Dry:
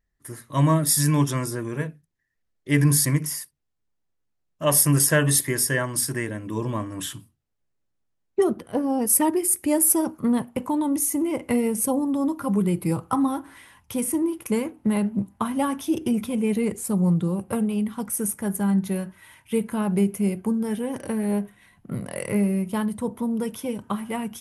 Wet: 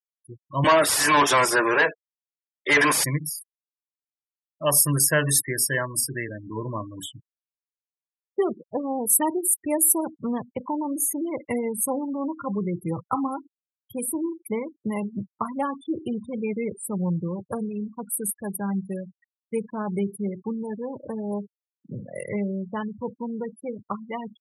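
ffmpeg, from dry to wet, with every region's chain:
-filter_complex "[0:a]asettb=1/sr,asplit=3[a][b][c];[a]atrim=end=0.644[d];[b]atrim=start=0.64:end=3.04,asetpts=PTS-STARTPTS,afade=t=in:d=0.004:c=qsin,afade=t=out:st=2.396:d=0.004:c=qsin,highpass=480,adynamicequalizer=threshold=0.0126:dfrequency=980:dqfactor=1.4:tfrequency=980:tqfactor=1.4:attack=5:release=100:ratio=0.375:range=2:mode=cutabove:tftype=bell,asplit=2[e][f];[f]highpass=f=720:p=1,volume=33dB,asoftclip=type=tanh:threshold=-7.5dB[g];[e][g]amix=inputs=2:normalize=0,lowpass=f=2.7k:p=1,volume=-6dB[h];[c]atrim=start=3.036[i];[d][h]acrossfade=d=0.004:c1=hsin:c2=qsin[j];[j][i]acrossfade=d=0.004:c1=qsin:c2=hsin,afftfilt=real='re*gte(hypot(re,im),0.0447)':imag='im*gte(hypot(re,im),0.0447)':win_size=1024:overlap=0.75,highpass=97,equalizer=f=230:t=o:w=1.4:g=-6.5"

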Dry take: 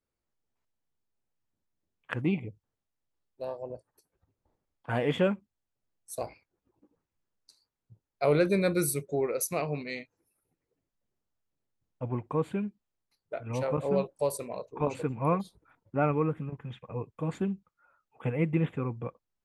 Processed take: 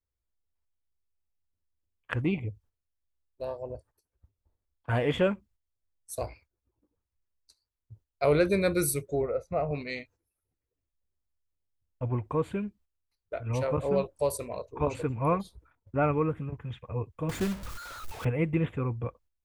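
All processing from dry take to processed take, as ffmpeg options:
-filter_complex "[0:a]asettb=1/sr,asplit=3[a][b][c];[a]atrim=end=9.224[d];[b]atrim=start=9.22:end=9.71,asetpts=PTS-STARTPTS,afade=t=in:d=0.004:c=qsin,afade=t=out:st=0.486:d=0.004:c=qsin,lowpass=1.1k,aecho=1:1:1.5:0.55,atrim=end_sample=21609[e];[c]atrim=start=9.706[f];[d][e]acrossfade=d=0.004:c1=hsin:c2=qsin[g];[g][f]acrossfade=d=0.004:c1=qsin:c2=hsin,asettb=1/sr,asplit=3[h][i][j];[h]atrim=end=17.294[k];[i]atrim=start=17.29:end=18.25,asetpts=PTS-STARTPTS,afade=t=in:d=0.004:c=qsin,afade=t=out:st=0.956:d=0.004:c=qsin,aeval=exprs='val(0)+0.5*0.0126*sgn(val(0))':c=same,acrusher=bits=3:mode=log:mix=0:aa=0.000001[l];[j]atrim=start=18.246[m];[k][l]acrossfade=d=0.004:c1=hsin:c2=qsin[n];[n][m]acrossfade=d=0.004:c1=qsin:c2=hsin,lowshelf=f=110:t=q:w=1.5:g=11.5,agate=range=-10dB:threshold=-58dB:ratio=16:detection=peak,bandreject=f=800:w=14,volume=1.5dB"

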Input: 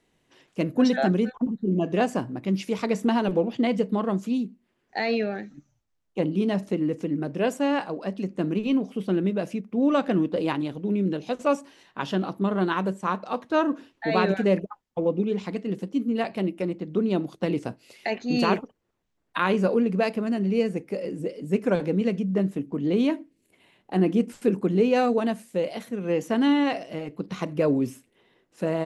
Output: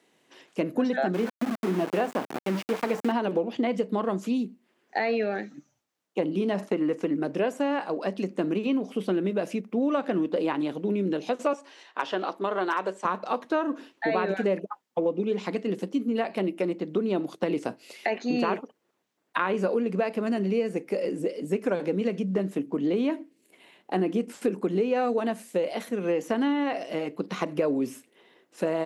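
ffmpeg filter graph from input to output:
-filter_complex "[0:a]asettb=1/sr,asplit=3[a][b][c];[a]atrim=end=1.144[d];[b]atrim=start=1.14:end=3.12,asetpts=PTS-STARTPTS,afade=t=in:d=0.004:c=qsin,afade=t=out:st=1.976:d=0.004:c=qsin,bandreject=f=50:t=h:w=6,bandreject=f=100:t=h:w=6,bandreject=f=150:t=h:w=6,bandreject=f=200:t=h:w=6,bandreject=f=250:t=h:w=6,bandreject=f=300:t=h:w=6,bandreject=f=350:t=h:w=6,bandreject=f=400:t=h:w=6,bandreject=f=450:t=h:w=6,aeval=exprs='val(0)*gte(abs(val(0)),0.0316)':c=same[e];[c]atrim=start=3.116[f];[d][e]acrossfade=d=0.004:c1=hsin:c2=qsin[g];[g][f]acrossfade=d=0.004:c1=qsin:c2=hsin,asettb=1/sr,asplit=3[h][i][j];[h]atrim=end=6.584[k];[i]atrim=start=6.58:end=7.14,asetpts=PTS-STARTPTS,afade=t=in:d=0.004:c=qsin,afade=t=out:st=0.556:d=0.004:c=qsin,agate=range=-33dB:threshold=-40dB:ratio=3:release=100:detection=peak,equalizer=f=1.2k:w=0.74:g=7.5[l];[j]atrim=start=7.136[m];[k][l]acrossfade=d=0.004:c1=hsin:c2=qsin[n];[n][m]acrossfade=d=0.004:c1=qsin:c2=hsin,asettb=1/sr,asplit=3[o][p][q];[o]atrim=end=11.534[r];[p]atrim=start=11.53:end=13.05,asetpts=PTS-STARTPTS,afade=t=in:d=0.004:c=qsin,afade=t=out:st=1.516:d=0.004:c=qsin,highpass=420,lowpass=7.1k,aeval=exprs='0.15*(abs(mod(val(0)/0.15+3,4)-2)-1)':c=same[s];[q]atrim=start=13.046[t];[r][s]acrossfade=d=0.004:c1=hsin:c2=qsin[u];[u][t]acrossfade=d=0.004:c1=qsin:c2=hsin,acrossover=split=2600[v][w];[w]acompressor=threshold=-45dB:ratio=4:attack=1:release=60[x];[v][x]amix=inputs=2:normalize=0,highpass=260,acompressor=threshold=-28dB:ratio=4,volume=5dB"

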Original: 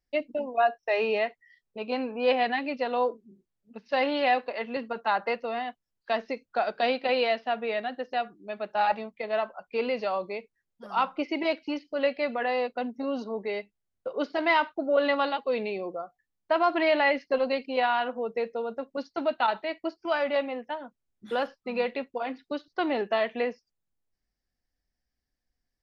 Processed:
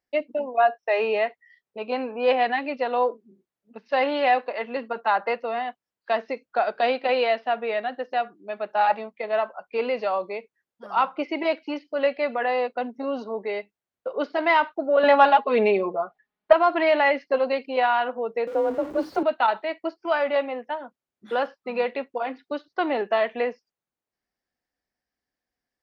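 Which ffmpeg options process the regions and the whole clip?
-filter_complex "[0:a]asettb=1/sr,asplit=3[a][b][c];[a]atrim=end=15.034[d];[b]atrim=start=15.03:end=16.53,asetpts=PTS-STARTPTS,afade=t=in:d=0.004:c=qsin,afade=t=out:st=1.496:d=0.004:c=qsin,acontrast=23,lowpass=3.5k,aecho=1:1:4.8:0.93,atrim=end_sample=66150[e];[c]atrim=start=16.526[f];[d][e]acrossfade=d=0.004:c1=hsin:c2=qsin[g];[g][f]acrossfade=d=0.004:c1=qsin:c2=hsin,asettb=1/sr,asplit=3[h][i][j];[h]atrim=end=18.474[k];[i]atrim=start=18.47:end=19.23,asetpts=PTS-STARTPTS,afade=t=in:d=0.004:c=qsin,afade=t=out:st=0.756:d=0.004:c=qsin,aeval=exprs='val(0)+0.5*0.0158*sgn(val(0))':c=same,tiltshelf=f=930:g=7,afreqshift=36[l];[j]atrim=start=19.226[m];[k][l]acrossfade=d=0.004:c1=hsin:c2=qsin[n];[n][m]acrossfade=d=0.004:c1=qsin:c2=hsin,highpass=f=490:p=1,highshelf=f=3k:g=-11.5,acontrast=69"

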